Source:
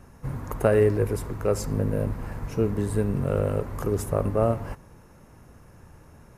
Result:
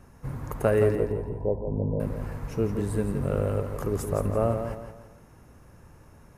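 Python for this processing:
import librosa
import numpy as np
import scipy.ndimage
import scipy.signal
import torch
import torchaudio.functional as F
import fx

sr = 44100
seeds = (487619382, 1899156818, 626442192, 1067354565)

p1 = fx.cheby1_lowpass(x, sr, hz=1000.0, order=8, at=(0.95, 2.0))
p2 = p1 + fx.echo_feedback(p1, sr, ms=168, feedback_pct=37, wet_db=-8, dry=0)
y = F.gain(torch.from_numpy(p2), -2.5).numpy()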